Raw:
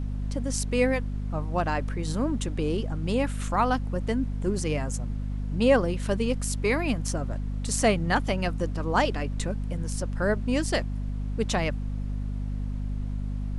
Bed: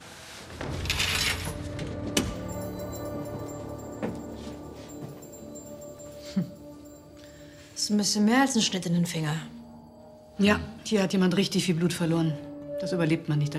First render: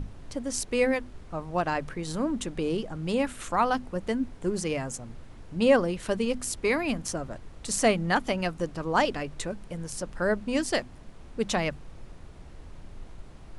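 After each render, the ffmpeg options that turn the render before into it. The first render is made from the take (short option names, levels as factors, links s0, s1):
-af "bandreject=f=50:t=h:w=6,bandreject=f=100:t=h:w=6,bandreject=f=150:t=h:w=6,bandreject=f=200:t=h:w=6,bandreject=f=250:t=h:w=6"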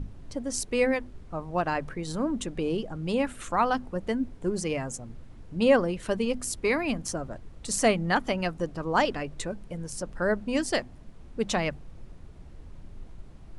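-af "afftdn=nr=6:nf=-47"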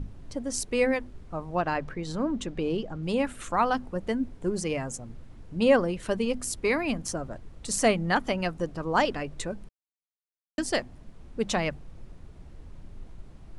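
-filter_complex "[0:a]asettb=1/sr,asplit=3[s0][s1][s2];[s0]atrim=end=1.554[s3];[s1]atrim=start=1.55:end=3.03,asetpts=PTS-STARTPTS,afade=t=in:d=0.004:c=qsin,afade=t=out:st=1.476:d=0.004:c=qsin,lowpass=6500[s4];[s2]atrim=start=3.026[s5];[s3][s4]acrossfade=d=0.004:c1=hsin:c2=qsin[s6];[s6][s5]acrossfade=d=0.004:c1=qsin:c2=hsin,asplit=3[s7][s8][s9];[s7]atrim=end=9.69,asetpts=PTS-STARTPTS,afade=t=out:st=9.686:d=0.004:c=hsin[s10];[s8]atrim=start=9.69:end=10.58,asetpts=PTS-STARTPTS,volume=0[s11];[s9]atrim=start=10.58,asetpts=PTS-STARTPTS,afade=t=in:d=0.004:c=hsin[s12];[s10][s11][s12]concat=n=3:v=0:a=1"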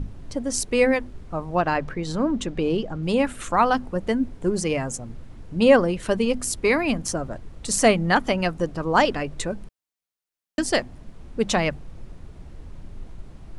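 -af "volume=1.88"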